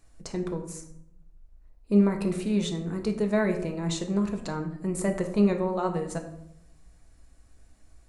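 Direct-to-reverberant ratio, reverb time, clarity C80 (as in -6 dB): 4.0 dB, 0.75 s, 12.0 dB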